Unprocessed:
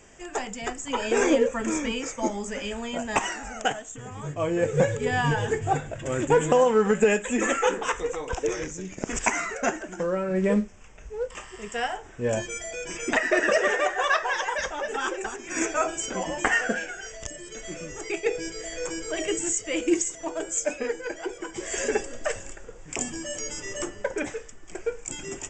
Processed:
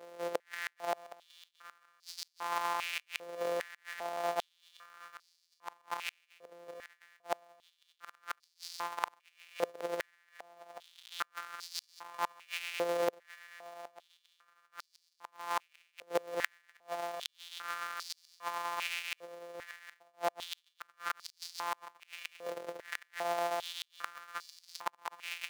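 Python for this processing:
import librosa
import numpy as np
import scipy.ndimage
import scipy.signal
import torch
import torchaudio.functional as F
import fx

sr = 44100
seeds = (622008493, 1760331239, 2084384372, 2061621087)

y = np.r_[np.sort(x[:len(x) // 256 * 256].reshape(-1, 256), axis=1).ravel(), x[len(x) // 256 * 256:]]
y = fx.high_shelf(y, sr, hz=2200.0, db=-5.0)
y = fx.gate_flip(y, sr, shuts_db=-21.0, range_db=-37)
y = y + 10.0 ** (-15.0 / 20.0) * np.pad(y, (int(768 * sr / 1000.0), 0))[:len(y)]
y = fx.filter_held_highpass(y, sr, hz=2.5, low_hz=510.0, high_hz=4700.0)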